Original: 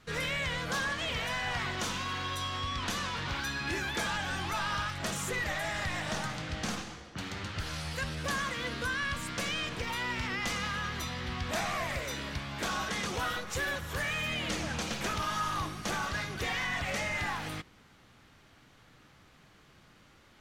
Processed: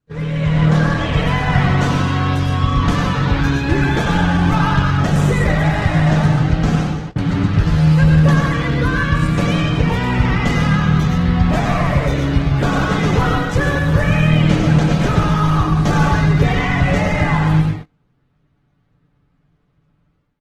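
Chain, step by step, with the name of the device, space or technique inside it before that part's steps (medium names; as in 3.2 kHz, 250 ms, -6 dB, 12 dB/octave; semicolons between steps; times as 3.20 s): high-pass 61 Hz 6 dB/octave; 15.77–16.19 s: treble shelf 3.3 kHz +3.5 dB; tilt EQ -4 dB/octave; comb 6.9 ms, depth 43%; speakerphone in a meeting room (reverberation RT60 0.60 s, pre-delay 93 ms, DRR 2 dB; level rider gain up to 12 dB; gate -27 dBFS, range -25 dB; trim +1 dB; Opus 16 kbps 48 kHz)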